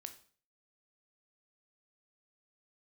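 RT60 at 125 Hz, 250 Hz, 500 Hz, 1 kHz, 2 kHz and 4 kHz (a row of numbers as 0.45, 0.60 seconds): 0.55, 0.50, 0.45, 0.45, 0.40, 0.40 seconds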